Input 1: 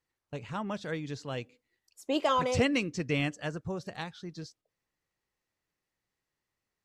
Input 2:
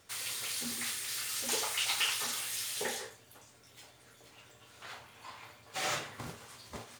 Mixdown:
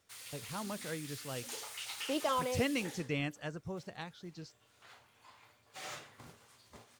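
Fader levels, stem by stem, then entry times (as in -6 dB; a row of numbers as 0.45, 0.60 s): -6.0, -11.0 dB; 0.00, 0.00 s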